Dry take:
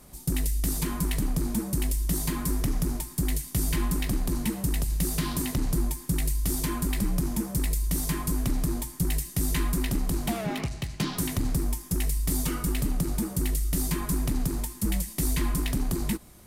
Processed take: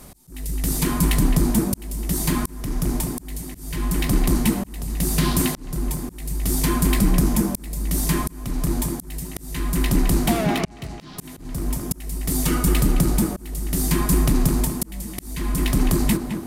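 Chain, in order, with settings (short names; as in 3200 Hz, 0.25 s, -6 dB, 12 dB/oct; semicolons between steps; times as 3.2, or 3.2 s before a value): tape echo 0.213 s, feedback 70%, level -5 dB, low-pass 1900 Hz; auto swell 0.632 s; gain +8.5 dB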